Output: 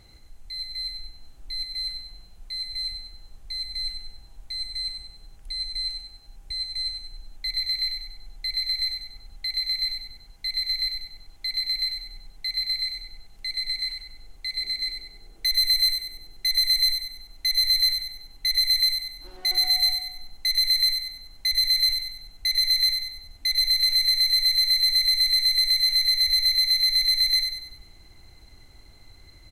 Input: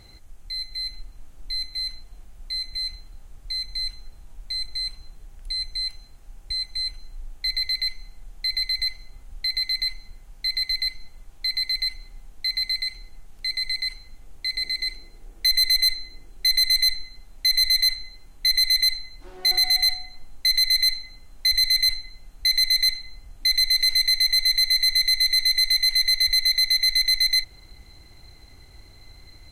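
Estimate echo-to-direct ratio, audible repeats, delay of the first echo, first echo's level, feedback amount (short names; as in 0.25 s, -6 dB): -5.0 dB, 5, 96 ms, -6.0 dB, 45%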